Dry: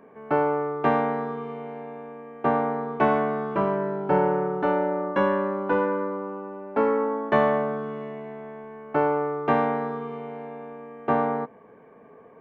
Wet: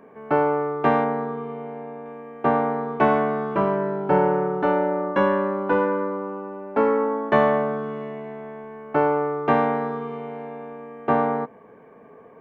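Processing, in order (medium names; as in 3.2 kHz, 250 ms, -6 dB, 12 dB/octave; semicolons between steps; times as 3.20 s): 1.04–2.06 s: treble shelf 3.1 kHz -11.5 dB; trim +2.5 dB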